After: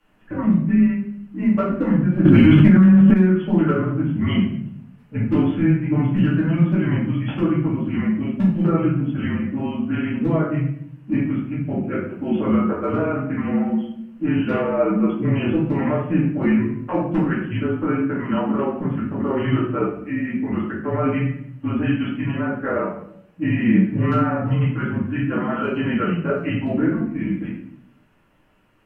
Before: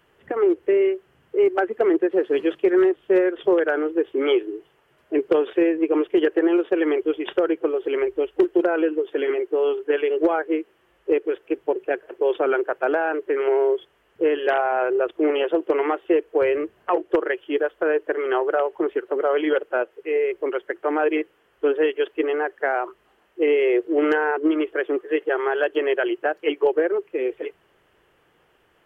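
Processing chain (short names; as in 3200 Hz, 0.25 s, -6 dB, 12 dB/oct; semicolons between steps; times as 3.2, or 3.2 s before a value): HPF 43 Hz; de-hum 107.2 Hz, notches 31; frequency shift -180 Hz; wow and flutter 16 cents; shoebox room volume 120 m³, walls mixed, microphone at 2.3 m; 2.25–3.14 fast leveller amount 100%; gain -9 dB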